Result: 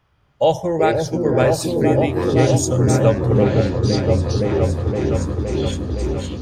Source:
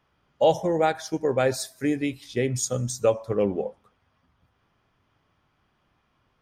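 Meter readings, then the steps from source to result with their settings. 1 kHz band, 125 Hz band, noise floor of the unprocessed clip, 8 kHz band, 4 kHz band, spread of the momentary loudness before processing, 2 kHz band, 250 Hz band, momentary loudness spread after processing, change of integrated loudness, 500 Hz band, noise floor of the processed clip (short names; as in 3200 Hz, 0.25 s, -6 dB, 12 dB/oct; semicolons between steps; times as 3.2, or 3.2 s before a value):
+6.5 dB, +16.5 dB, -70 dBFS, +4.5 dB, +8.0 dB, 6 LU, +6.5 dB, +10.5 dB, 7 LU, +7.0 dB, +8.0 dB, -60 dBFS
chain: resonant low shelf 150 Hz +6.5 dB, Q 1.5; echoes that change speed 0.209 s, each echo -6 st, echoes 2, each echo -6 dB; on a send: repeats that get brighter 0.516 s, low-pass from 400 Hz, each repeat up 1 oct, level 0 dB; on the sum: gain +4 dB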